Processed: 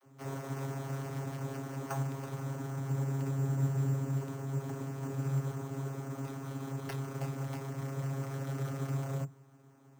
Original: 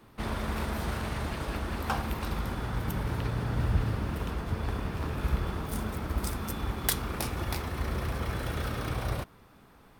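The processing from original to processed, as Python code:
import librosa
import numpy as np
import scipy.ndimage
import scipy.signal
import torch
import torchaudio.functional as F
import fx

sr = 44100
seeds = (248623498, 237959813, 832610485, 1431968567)

y = fx.vocoder(x, sr, bands=32, carrier='saw', carrier_hz=136.0)
y = np.repeat(y[::6], 6)[:len(y)]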